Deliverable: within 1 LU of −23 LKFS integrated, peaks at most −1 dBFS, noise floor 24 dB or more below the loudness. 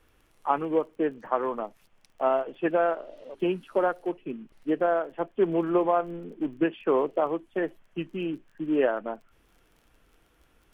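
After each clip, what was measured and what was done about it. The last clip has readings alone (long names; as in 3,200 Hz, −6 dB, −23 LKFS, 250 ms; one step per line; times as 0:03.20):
crackle rate 27 per second; integrated loudness −28.0 LKFS; sample peak −9.5 dBFS; target loudness −23.0 LKFS
→ click removal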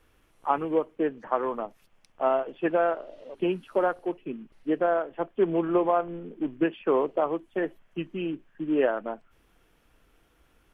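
crackle rate 0 per second; integrated loudness −28.0 LKFS; sample peak −9.5 dBFS; target loudness −23.0 LKFS
→ level +5 dB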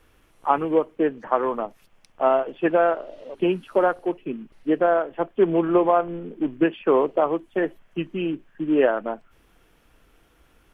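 integrated loudness −23.0 LKFS; sample peak −4.5 dBFS; background noise floor −60 dBFS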